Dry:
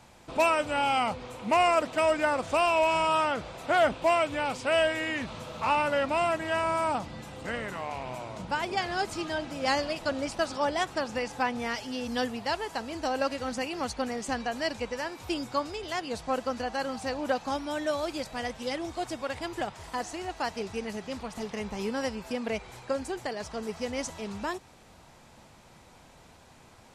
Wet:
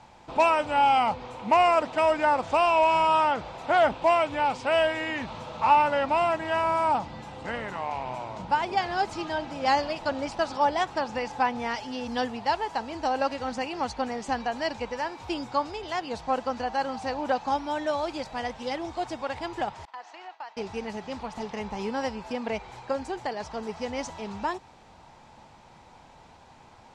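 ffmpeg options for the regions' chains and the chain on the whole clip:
-filter_complex "[0:a]asettb=1/sr,asplit=3[a][b][c];[a]atrim=end=19.854[d];[b]atrim=start=19.85:end=20.57,asetpts=PTS-STARTPTS,afade=t=in:d=0.004:c=qsin,afade=t=out:st=0.716:d=0.004:c=qsin,agate=range=-33dB:threshold=-38dB:ratio=3:release=100:detection=peak,highpass=760,lowpass=3.9k,acompressor=threshold=-43dB:ratio=3:attack=3.2:release=140:knee=1:detection=peak[e];[c]atrim=start=20.566[f];[d][e]acrossfade=d=0.004:c1=hsin:c2=qsin[g];[g][f]acrossfade=d=0.004:c1=qsin:c2=hsin,lowpass=6k,equalizer=f=870:w=3.3:g=8.5"

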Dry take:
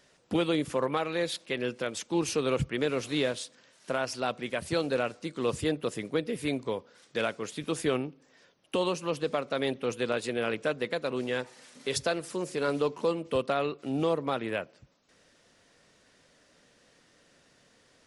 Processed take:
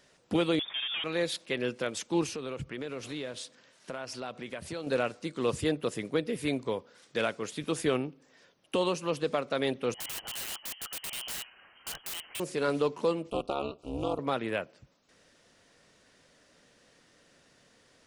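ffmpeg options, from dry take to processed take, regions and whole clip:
-filter_complex "[0:a]asettb=1/sr,asplit=3[a][b][c];[a]atrim=end=0.594[d];[b]atrim=start=0.59:end=1.04,asetpts=PTS-STARTPTS,afade=t=in:d=0.004:c=qsin,afade=t=out:st=0.446:d=0.004:c=qsin,volume=31dB,asoftclip=hard,volume=-31dB,lowpass=f=3.1k:t=q:w=0.5098,lowpass=f=3.1k:t=q:w=0.6013,lowpass=f=3.1k:t=q:w=0.9,lowpass=f=3.1k:t=q:w=2.563,afreqshift=-3700[e];[c]atrim=start=1.036[f];[d][e]acrossfade=d=0.004:c1=hsin:c2=qsin[g];[g][f]acrossfade=d=0.004:c1=qsin:c2=hsin,asettb=1/sr,asplit=3[h][i][j];[h]atrim=end=2.264[k];[i]atrim=start=2.26:end=4.87,asetpts=PTS-STARTPTS,afade=t=in:d=0.004:c=qsin,afade=t=out:st=2.606:d=0.004:c=qsin,highshelf=f=8.5k:g=-5.5,acompressor=threshold=-36dB:ratio=3:attack=3.2:release=140:knee=1:detection=peak[l];[j]atrim=start=4.866[m];[k][l]acrossfade=d=0.004:c1=hsin:c2=qsin[n];[n][m]acrossfade=d=0.004:c1=qsin:c2=hsin,asettb=1/sr,asplit=3[o][p][q];[o]atrim=end=9.944[r];[p]atrim=start=9.94:end=12.4,asetpts=PTS-STARTPTS,afade=t=in:d=0.004:c=qsin,afade=t=out:st=2.456:d=0.004:c=qsin,highpass=460,lowpass=f=2.9k:t=q:w=0.5098,lowpass=f=2.9k:t=q:w=0.6013,lowpass=f=2.9k:t=q:w=0.9,lowpass=f=2.9k:t=q:w=2.563,afreqshift=-3400,aeval=exprs='(mod(42.2*val(0)+1,2)-1)/42.2':c=same[s];[q]atrim=start=12.396[t];[r][s]acrossfade=d=0.004:c1=hsin:c2=qsin[u];[u][t]acrossfade=d=0.004:c1=qsin:c2=hsin,asettb=1/sr,asplit=3[v][w][x];[v]atrim=end=13.304[y];[w]atrim=start=13.3:end=14.19,asetpts=PTS-STARTPTS,afade=t=in:d=0.004:c=qsin,afade=t=out:st=0.886:d=0.004:c=qsin,equalizer=f=88:t=o:w=2:g=-5,tremolo=f=210:d=1,asuperstop=centerf=1800:order=8:qfactor=1.7[z];[x]atrim=start=14.186[aa];[y][z]acrossfade=d=0.004:c1=hsin:c2=qsin[ab];[ab][aa]acrossfade=d=0.004:c1=qsin:c2=hsin"

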